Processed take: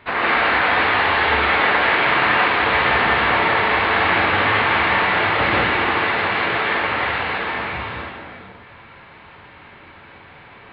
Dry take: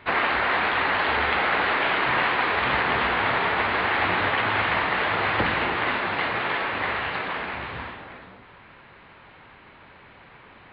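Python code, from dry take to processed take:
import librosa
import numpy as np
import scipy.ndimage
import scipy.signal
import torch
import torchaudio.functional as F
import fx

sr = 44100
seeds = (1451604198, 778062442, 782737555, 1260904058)

y = fx.rev_gated(x, sr, seeds[0], gate_ms=230, shape='rising', drr_db=-5.0)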